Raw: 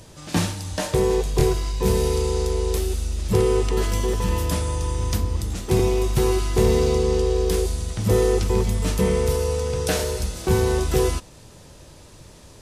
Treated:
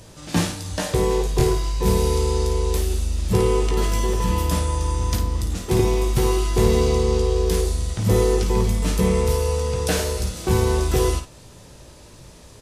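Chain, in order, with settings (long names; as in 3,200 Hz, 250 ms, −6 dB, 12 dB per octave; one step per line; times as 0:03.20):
ambience of single reflections 17 ms −8.5 dB, 54 ms −8 dB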